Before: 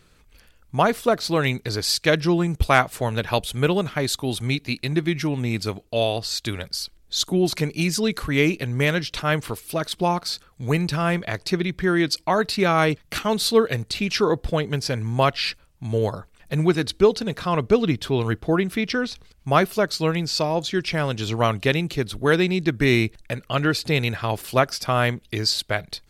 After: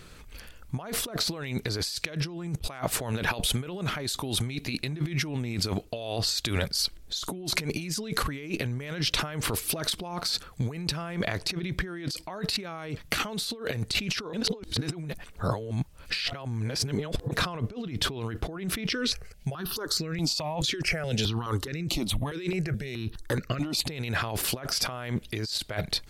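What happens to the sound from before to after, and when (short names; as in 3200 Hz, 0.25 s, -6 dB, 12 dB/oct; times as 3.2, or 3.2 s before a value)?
3.13–3.77 bell 83 Hz -6.5 dB
14.33–17.31 reverse
18.91–23.87 step phaser 4.7 Hz 200–3200 Hz
whole clip: negative-ratio compressor -32 dBFS, ratio -1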